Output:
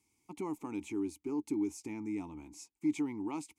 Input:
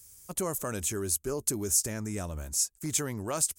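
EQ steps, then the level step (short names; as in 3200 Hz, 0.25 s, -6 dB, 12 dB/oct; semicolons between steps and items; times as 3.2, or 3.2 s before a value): vowel filter u; +8.0 dB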